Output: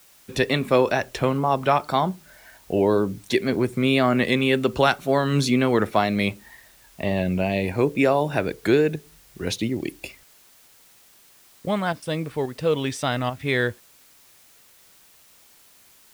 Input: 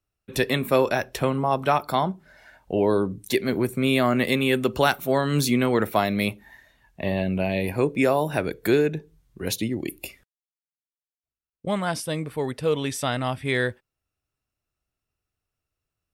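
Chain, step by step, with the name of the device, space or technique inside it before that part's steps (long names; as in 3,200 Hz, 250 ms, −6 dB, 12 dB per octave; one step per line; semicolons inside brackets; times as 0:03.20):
worn cassette (low-pass filter 7,000 Hz 12 dB per octave; tape wow and flutter; tape dropouts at 0:08.96/0:11.93/0:12.46/0:13.30, 92 ms −6 dB; white noise bed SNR 30 dB)
level +1.5 dB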